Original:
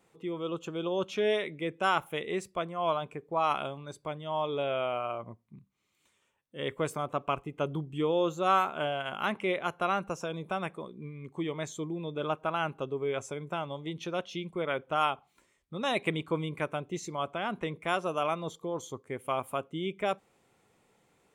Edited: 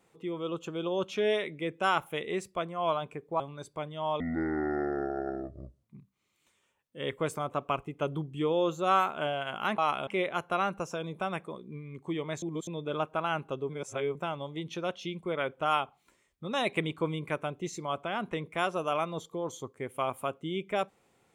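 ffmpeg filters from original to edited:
-filter_complex "[0:a]asplit=10[s0][s1][s2][s3][s4][s5][s6][s7][s8][s9];[s0]atrim=end=3.402[s10];[s1]atrim=start=3.688:end=4.494[s11];[s2]atrim=start=4.49:end=5.42,asetpts=PTS-STARTPTS,asetrate=25137,aresample=44100[s12];[s3]atrim=start=5.416:end=9.372[s13];[s4]atrim=start=3.398:end=3.692[s14];[s5]atrim=start=9.368:end=11.722[s15];[s6]atrim=start=11.718:end=11.972,asetpts=PTS-STARTPTS,areverse[s16];[s7]atrim=start=11.968:end=12.992[s17];[s8]atrim=start=12.988:end=13.452,asetpts=PTS-STARTPTS,areverse[s18];[s9]atrim=start=13.448[s19];[s10][s11]acrossfade=d=0.004:c1=hsin:c2=hsin[s20];[s20][s12]acrossfade=d=0.004:c1=hsin:c2=hsin[s21];[s21][s13]acrossfade=d=0.004:c1=hsin:c2=hsin[s22];[s22][s14]acrossfade=d=0.004:c1=hsin:c2=hsin[s23];[s23][s15]acrossfade=d=0.004:c1=hsin:c2=hsin[s24];[s24][s16]acrossfade=d=0.004:c1=hsin:c2=hsin[s25];[s25][s17]acrossfade=d=0.004:c1=hsin:c2=hsin[s26];[s26][s18]acrossfade=d=0.004:c1=hsin:c2=hsin[s27];[s27][s19]acrossfade=d=0.004:c1=hsin:c2=hsin"

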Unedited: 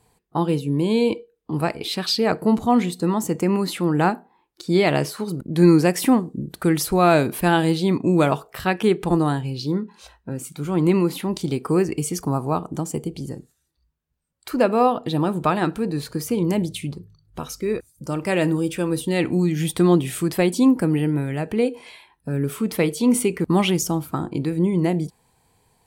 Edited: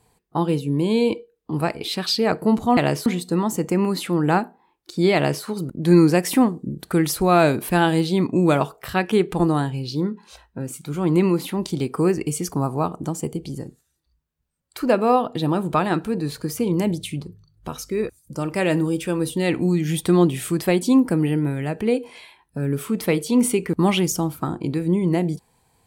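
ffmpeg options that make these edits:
-filter_complex "[0:a]asplit=3[s0][s1][s2];[s0]atrim=end=2.772[s3];[s1]atrim=start=4.858:end=5.152[s4];[s2]atrim=start=2.768[s5];[s3][s4]acrossfade=d=0.004:c1=hsin:c2=hsin[s6];[s6][s5]acrossfade=d=0.004:c1=hsin:c2=hsin"

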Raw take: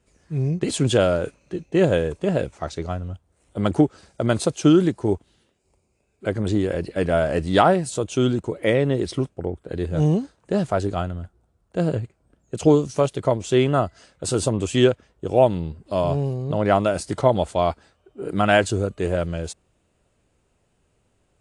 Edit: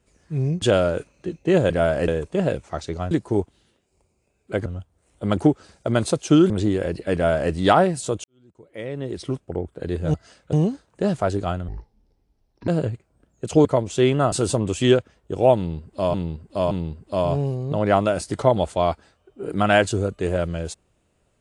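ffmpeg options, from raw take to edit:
-filter_complex "[0:a]asplit=16[s0][s1][s2][s3][s4][s5][s6][s7][s8][s9][s10][s11][s12][s13][s14][s15];[s0]atrim=end=0.622[s16];[s1]atrim=start=0.888:end=1.972[s17];[s2]atrim=start=7.028:end=7.412[s18];[s3]atrim=start=1.968:end=3.002[s19];[s4]atrim=start=4.838:end=6.392[s20];[s5]atrim=start=2.998:end=4.842[s21];[s6]atrim=start=6.388:end=8.13,asetpts=PTS-STARTPTS,afade=t=out:st=1.738:d=0.004:c=hsin[s22];[s7]atrim=start=8.13:end=10.032,asetpts=PTS-STARTPTS,afade=t=in:d=1.26:c=qua[s23];[s8]atrim=start=13.858:end=14.252[s24];[s9]atrim=start=10.028:end=11.184[s25];[s10]atrim=start=11.18:end=11.78,asetpts=PTS-STARTPTS,asetrate=26460,aresample=44100[s26];[s11]atrim=start=11.776:end=12.752[s27];[s12]atrim=start=13.188:end=13.862[s28];[s13]atrim=start=14.248:end=16.072[s29];[s14]atrim=start=15.498:end=16.072[s30];[s15]atrim=start=15.498[s31];[s16][s17]acrossfade=d=0.004:c1=hsin:c2=hsin[s32];[s32][s18]acrossfade=d=0.004:c1=hsin:c2=hsin[s33];[s33][s19]acrossfade=d=0.004:c1=hsin:c2=hsin[s34];[s34][s20]acrossfade=d=0.004:c1=hsin:c2=hsin[s35];[s35][s21]acrossfade=d=0.004:c1=hsin:c2=hsin[s36];[s22][s23]concat=n=2:v=0:a=1[s37];[s36][s37]acrossfade=d=0.004:c1=hsin:c2=hsin[s38];[s38][s24]acrossfade=d=0.004:c1=hsin:c2=hsin[s39];[s39][s25]acrossfade=d=0.004:c1=hsin:c2=hsin[s40];[s40][s26]acrossfade=d=0.004:c1=hsin:c2=hsin[s41];[s41][s27]acrossfade=d=0.004:c1=hsin:c2=hsin[s42];[s42][s28]acrossfade=d=0.004:c1=hsin:c2=hsin[s43];[s43][s29]acrossfade=d=0.004:c1=hsin:c2=hsin[s44];[s44][s30]acrossfade=d=0.004:c1=hsin:c2=hsin[s45];[s45][s31]acrossfade=d=0.004:c1=hsin:c2=hsin"

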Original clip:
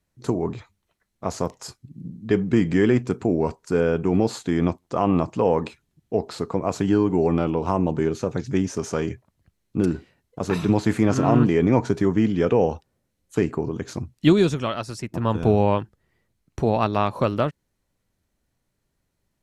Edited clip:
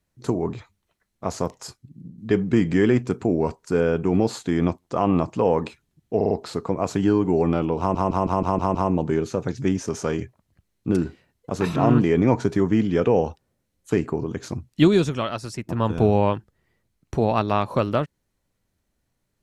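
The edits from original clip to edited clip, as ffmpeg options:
-filter_complex "[0:a]asplit=12[s0][s1][s2][s3][s4][s5][s6][s7][s8][s9][s10][s11];[s0]atrim=end=2.18,asetpts=PTS-STARTPTS,afade=t=out:st=1.61:d=0.57:silence=0.473151[s12];[s1]atrim=start=2.18:end=6.212,asetpts=PTS-STARTPTS,afade=t=in:d=0.004:c=hsin:silence=0.473151[s13];[s2]atrim=start=6.158:end=6.212[s14];[s3]atrim=start=6.158:end=6.212[s15];[s4]atrim=start=6.158:end=7.802[s16];[s5]atrim=start=7.638:end=7.802[s17];[s6]atrim=start=7.638:end=7.802[s18];[s7]atrim=start=7.638:end=7.802[s19];[s8]atrim=start=7.638:end=7.802[s20];[s9]atrim=start=7.638:end=7.802[s21];[s10]atrim=start=7.638:end=10.652[s22];[s11]atrim=start=11.208[s23];[s12][s13]concat=n=2:v=0:a=1[s24];[s24][s14]acrossfade=d=0.004:c1=hsin:c2=hsin[s25];[s25][s15]acrossfade=d=0.004:c1=hsin:c2=hsin[s26];[s26][s16]acrossfade=d=0.004:c1=hsin:c2=hsin[s27];[s27][s17]acrossfade=d=0.004:c1=hsin:c2=hsin[s28];[s28][s18]acrossfade=d=0.004:c1=hsin:c2=hsin[s29];[s29][s19]acrossfade=d=0.004:c1=hsin:c2=hsin[s30];[s30][s20]acrossfade=d=0.004:c1=hsin:c2=hsin[s31];[s31][s21]acrossfade=d=0.004:c1=hsin:c2=hsin[s32];[s32][s22]acrossfade=d=0.004:c1=hsin:c2=hsin[s33];[s33][s23]acrossfade=d=0.004:c1=hsin:c2=hsin"

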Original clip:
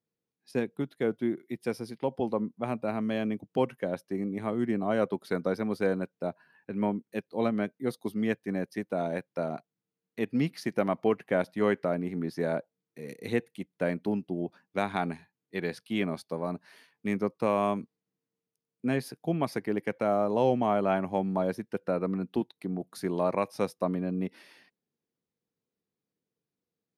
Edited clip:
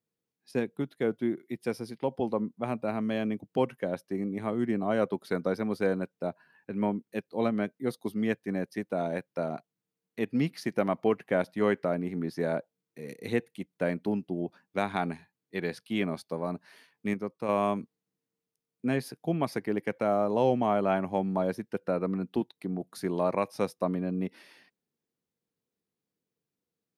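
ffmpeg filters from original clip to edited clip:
-filter_complex "[0:a]asplit=3[s0][s1][s2];[s0]atrim=end=17.142[s3];[s1]atrim=start=17.138:end=17.492,asetpts=PTS-STARTPTS,volume=0.531[s4];[s2]atrim=start=17.488[s5];[s3][s4]acrossfade=d=0.004:c1=hsin:c2=hsin[s6];[s6][s5]acrossfade=d=0.004:c1=hsin:c2=hsin"

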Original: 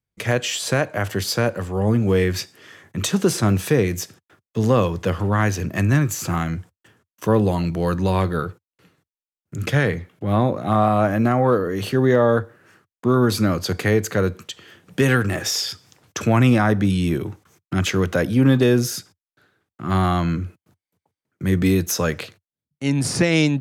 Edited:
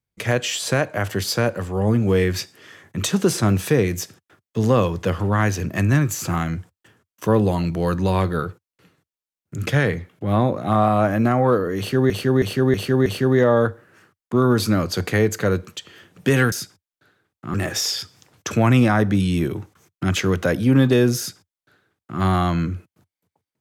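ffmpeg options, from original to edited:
-filter_complex "[0:a]asplit=7[s0][s1][s2][s3][s4][s5][s6];[s0]atrim=end=12.102[s7];[s1]atrim=start=11.778:end=12.102[s8];[s2]atrim=start=11.778:end=12.102[s9];[s3]atrim=start=11.778:end=12.102[s10];[s4]atrim=start=11.778:end=15.242[s11];[s5]atrim=start=18.878:end=19.902[s12];[s6]atrim=start=15.238[s13];[s7][s8]acrossfade=d=0.004:c1=hsin:c2=hsin[s14];[s14][s9]acrossfade=d=0.004:c1=hsin:c2=hsin[s15];[s15][s10]acrossfade=d=0.004:c1=hsin:c2=hsin[s16];[s16][s11]acrossfade=d=0.004:c1=hsin:c2=hsin[s17];[s17][s12]acrossfade=d=0.004:c1=hsin:c2=hsin[s18];[s18][s13]acrossfade=d=0.004:c1=hsin:c2=hsin"

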